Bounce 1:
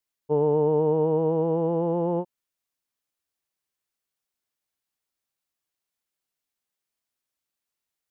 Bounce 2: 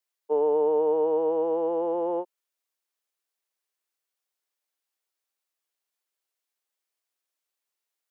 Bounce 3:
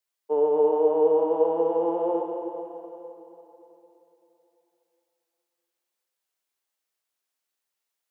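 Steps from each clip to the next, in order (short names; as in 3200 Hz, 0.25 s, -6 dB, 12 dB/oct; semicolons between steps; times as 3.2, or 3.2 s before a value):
HPF 350 Hz 24 dB/oct
plate-style reverb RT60 3.4 s, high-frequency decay 0.9×, DRR 2 dB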